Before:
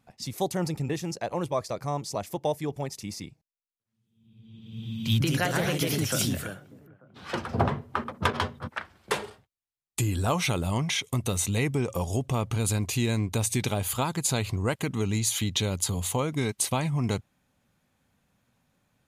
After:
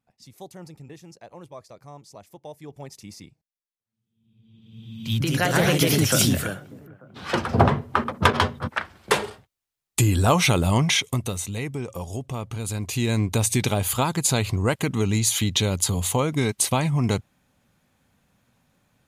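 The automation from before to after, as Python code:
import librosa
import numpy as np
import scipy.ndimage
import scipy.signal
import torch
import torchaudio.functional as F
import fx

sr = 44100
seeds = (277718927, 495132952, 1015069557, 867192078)

y = fx.gain(x, sr, db=fx.line((2.46, -13.0), (2.9, -5.0), (4.88, -5.0), (5.62, 7.5), (10.96, 7.5), (11.44, -3.5), (12.66, -3.5), (13.2, 5.0)))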